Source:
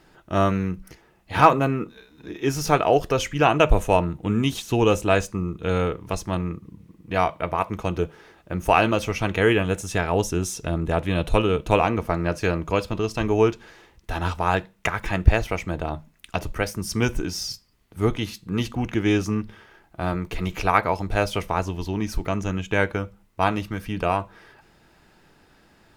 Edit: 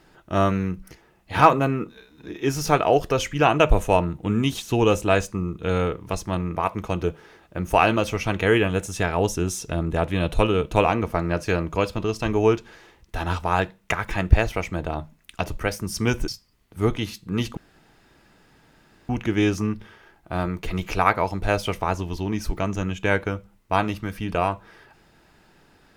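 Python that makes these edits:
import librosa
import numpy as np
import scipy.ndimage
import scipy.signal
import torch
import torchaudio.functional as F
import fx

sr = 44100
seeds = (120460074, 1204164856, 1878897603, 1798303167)

y = fx.edit(x, sr, fx.cut(start_s=6.56, length_s=0.95),
    fx.cut(start_s=17.23, length_s=0.25),
    fx.insert_room_tone(at_s=18.77, length_s=1.52), tone=tone)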